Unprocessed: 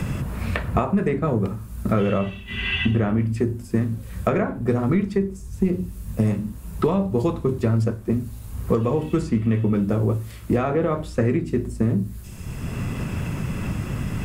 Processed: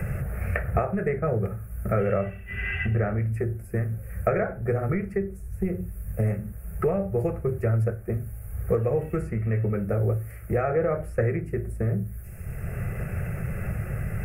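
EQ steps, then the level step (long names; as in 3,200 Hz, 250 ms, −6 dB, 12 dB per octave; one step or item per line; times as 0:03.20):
flat-topped bell 4,900 Hz −13 dB
phaser with its sweep stopped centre 1,000 Hz, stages 6
0.0 dB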